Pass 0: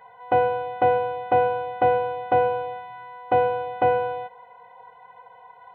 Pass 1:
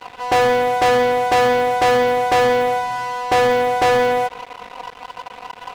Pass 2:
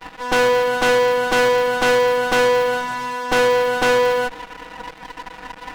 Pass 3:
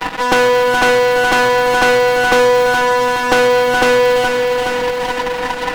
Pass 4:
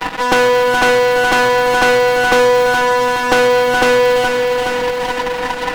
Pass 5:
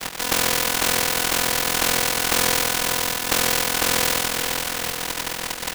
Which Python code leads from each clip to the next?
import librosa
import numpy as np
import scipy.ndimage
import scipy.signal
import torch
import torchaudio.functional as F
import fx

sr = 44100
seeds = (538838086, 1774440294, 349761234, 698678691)

y1 = fx.leveller(x, sr, passes=5)
y1 = F.gain(torch.from_numpy(y1), -2.0).numpy()
y2 = fx.lower_of_two(y1, sr, delay_ms=6.2)
y3 = fx.echo_feedback(y2, sr, ms=420, feedback_pct=54, wet_db=-9.0)
y3 = fx.band_squash(y3, sr, depth_pct=70)
y3 = F.gain(torch.from_numpy(y3), 4.0).numpy()
y4 = y3
y5 = fx.spec_flatten(y4, sr, power=0.31)
y5 = y5 * np.sin(2.0 * np.pi * 21.0 * np.arange(len(y5)) / sr)
y5 = F.gain(torch.from_numpy(y5), -6.0).numpy()